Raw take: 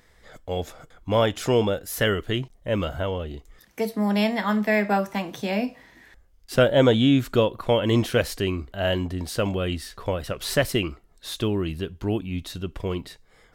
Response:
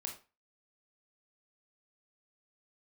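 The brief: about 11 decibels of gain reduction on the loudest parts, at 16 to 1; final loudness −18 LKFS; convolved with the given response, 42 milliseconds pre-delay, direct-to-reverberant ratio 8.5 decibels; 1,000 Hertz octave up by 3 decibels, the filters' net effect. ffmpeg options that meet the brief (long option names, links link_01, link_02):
-filter_complex "[0:a]equalizer=frequency=1000:width_type=o:gain=4,acompressor=threshold=-24dB:ratio=16,asplit=2[link_01][link_02];[1:a]atrim=start_sample=2205,adelay=42[link_03];[link_02][link_03]afir=irnorm=-1:irlink=0,volume=-7dB[link_04];[link_01][link_04]amix=inputs=2:normalize=0,volume=12dB"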